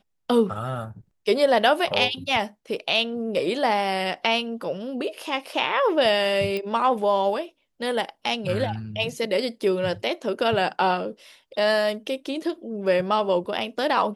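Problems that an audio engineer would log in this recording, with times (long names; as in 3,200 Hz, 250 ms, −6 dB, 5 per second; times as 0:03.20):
0:06.57: click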